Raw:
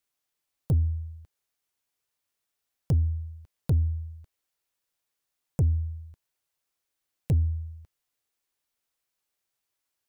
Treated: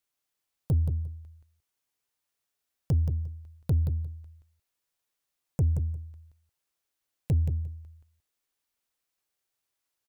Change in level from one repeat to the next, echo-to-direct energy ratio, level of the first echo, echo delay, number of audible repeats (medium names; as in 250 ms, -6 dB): -16.5 dB, -7.5 dB, -7.5 dB, 176 ms, 2